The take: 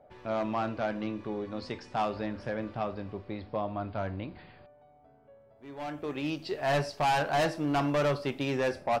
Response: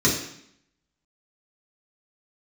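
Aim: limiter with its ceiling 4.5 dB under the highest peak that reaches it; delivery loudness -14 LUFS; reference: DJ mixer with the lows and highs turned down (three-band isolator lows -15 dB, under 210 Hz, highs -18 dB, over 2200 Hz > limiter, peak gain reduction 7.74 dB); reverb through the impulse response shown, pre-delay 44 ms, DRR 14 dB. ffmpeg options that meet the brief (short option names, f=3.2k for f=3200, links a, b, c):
-filter_complex "[0:a]alimiter=level_in=2.5dB:limit=-24dB:level=0:latency=1,volume=-2.5dB,asplit=2[a][b];[1:a]atrim=start_sample=2205,adelay=44[c];[b][c]afir=irnorm=-1:irlink=0,volume=-30dB[d];[a][d]amix=inputs=2:normalize=0,acrossover=split=210 2200:gain=0.178 1 0.126[e][f][g];[e][f][g]amix=inputs=3:normalize=0,volume=24.5dB,alimiter=limit=-4dB:level=0:latency=1"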